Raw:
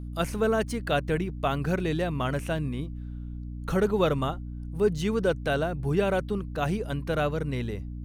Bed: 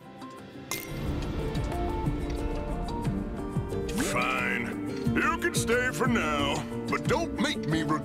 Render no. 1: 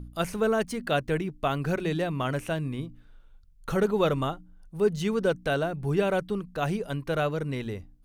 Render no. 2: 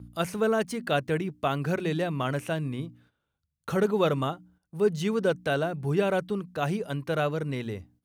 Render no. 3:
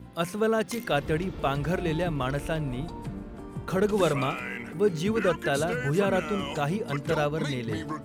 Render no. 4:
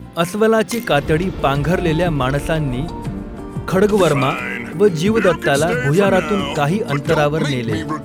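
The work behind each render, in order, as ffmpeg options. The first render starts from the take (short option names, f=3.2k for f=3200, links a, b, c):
-af "bandreject=f=60:t=h:w=4,bandreject=f=120:t=h:w=4,bandreject=f=180:t=h:w=4,bandreject=f=240:t=h:w=4,bandreject=f=300:t=h:w=4"
-af "highpass=f=75:w=0.5412,highpass=f=75:w=1.3066,agate=range=-11dB:threshold=-58dB:ratio=16:detection=peak"
-filter_complex "[1:a]volume=-6.5dB[a];[0:a][a]amix=inputs=2:normalize=0"
-af "volume=11dB,alimiter=limit=-3dB:level=0:latency=1"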